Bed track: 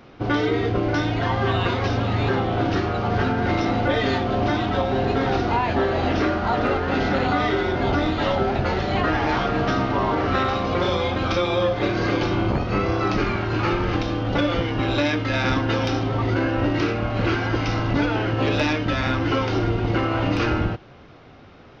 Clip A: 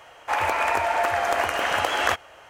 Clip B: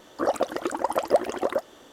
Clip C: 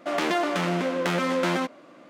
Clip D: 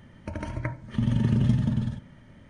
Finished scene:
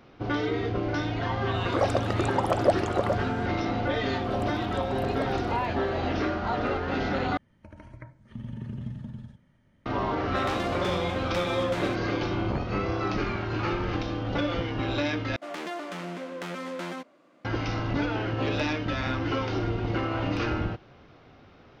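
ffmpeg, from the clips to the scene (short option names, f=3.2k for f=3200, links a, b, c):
-filter_complex "[2:a]asplit=2[a][b];[3:a]asplit=2[c][d];[0:a]volume=-6.5dB[e];[a]lowpass=8.7k[f];[4:a]acrossover=split=3200[g][h];[h]acompressor=threshold=-57dB:ratio=4:attack=1:release=60[i];[g][i]amix=inputs=2:normalize=0[j];[e]asplit=3[k][l][m];[k]atrim=end=7.374[n];[j]atrim=end=2.49,asetpts=PTS-STARTPTS,volume=-13.5dB[o];[l]atrim=start=9.856:end=15.364[p];[d]atrim=end=2.09,asetpts=PTS-STARTPTS,volume=-10.5dB[q];[m]atrim=start=17.446[r];[f]atrim=end=1.92,asetpts=PTS-STARTPTS,volume=-1.5dB,afade=t=in:d=0.004:c=hsin,afade=t=out:st=1.916:d=0.004:c=hsin,adelay=1540[s];[b]atrim=end=1.92,asetpts=PTS-STARTPTS,volume=-14.5dB,afade=t=in:d=0.004:c=hsin,afade=t=out:st=1.916:d=0.004:c=hsin,adelay=4060[t];[c]atrim=end=2.09,asetpts=PTS-STARTPTS,volume=-8dB,afade=t=in:d=0.004:c=hsin,afade=t=out:st=2.086:d=0.004:c=hsin,adelay=10290[u];[n][o]acrossfade=d=0.004:c1=hsin:c2=hsin[v];[v][p]acrossfade=d=0.004:c1=hsin:c2=hsin[w];[w][q]acrossfade=d=0.004:c1=hsin:c2=hsin[x];[x][r]acrossfade=d=0.004:c1=hsin:c2=hsin[y];[y][s][t][u]amix=inputs=4:normalize=0"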